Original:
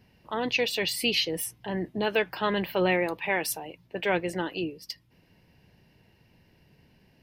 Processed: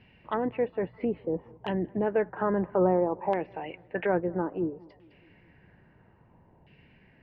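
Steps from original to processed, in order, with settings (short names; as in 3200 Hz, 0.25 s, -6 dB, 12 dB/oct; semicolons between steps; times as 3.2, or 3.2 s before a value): running mean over 5 samples; treble ducked by the level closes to 700 Hz, closed at -27 dBFS; on a send: tape echo 0.207 s, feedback 63%, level -24 dB, low-pass 1800 Hz; on the sum: LFO low-pass saw down 0.6 Hz 870–2800 Hz; gain +1.5 dB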